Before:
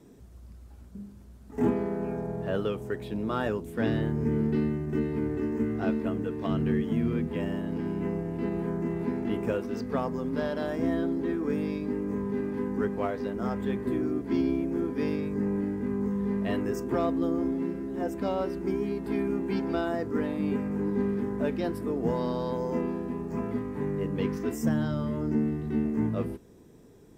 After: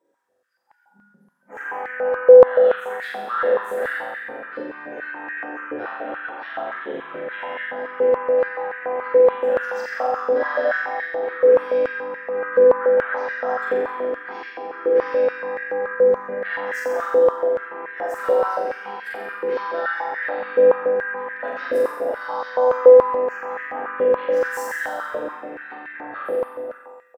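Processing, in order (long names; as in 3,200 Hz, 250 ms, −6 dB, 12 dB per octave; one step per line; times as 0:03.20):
parametric band 1,600 Hz +13 dB 0.33 octaves
slap from a distant wall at 89 metres, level −18 dB
in parallel at +0.5 dB: downward compressor 20 to 1, threshold −36 dBFS, peak gain reduction 17 dB
on the sum: brickwall limiter −23.5 dBFS, peak gain reduction 11 dB
pitch-shifted copies added −4 semitones −12 dB, +3 semitones −8 dB
noise reduction from a noise print of the clip's start 26 dB
hard clipping −20.5 dBFS, distortion −50 dB
flutter between parallel walls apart 7.5 metres, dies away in 1.2 s
on a send at −2.5 dB: convolution reverb RT60 1.3 s, pre-delay 3 ms
on the sum: high-pass on a step sequencer 7 Hz 500–1,800 Hz
level −2 dB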